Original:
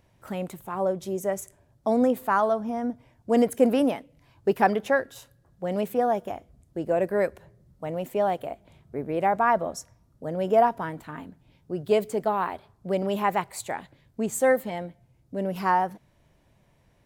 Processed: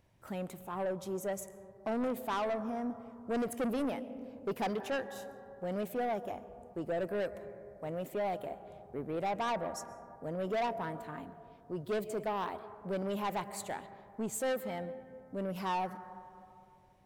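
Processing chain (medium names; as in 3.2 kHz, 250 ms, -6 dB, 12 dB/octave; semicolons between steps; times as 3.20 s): on a send at -17 dB: reverberation RT60 2.7 s, pre-delay 90 ms; on the sum: saturation -23.5 dBFS, distortion -8 dB; trim -6 dB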